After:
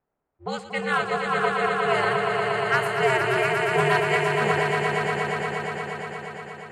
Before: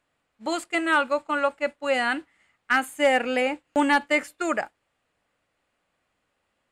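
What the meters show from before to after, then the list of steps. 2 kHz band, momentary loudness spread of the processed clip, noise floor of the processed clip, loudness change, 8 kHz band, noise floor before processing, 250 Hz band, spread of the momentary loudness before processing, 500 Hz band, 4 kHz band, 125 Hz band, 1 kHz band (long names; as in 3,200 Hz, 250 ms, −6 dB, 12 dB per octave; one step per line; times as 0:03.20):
+2.0 dB, 13 LU, −81 dBFS, +1.0 dB, −0.5 dB, −76 dBFS, −4.0 dB, 9 LU, +3.0 dB, +2.0 dB, can't be measured, +3.0 dB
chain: low-pass that shuts in the quiet parts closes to 990 Hz, open at −19 dBFS
ring modulation 130 Hz
echo that builds up and dies away 118 ms, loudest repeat 5, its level −6 dB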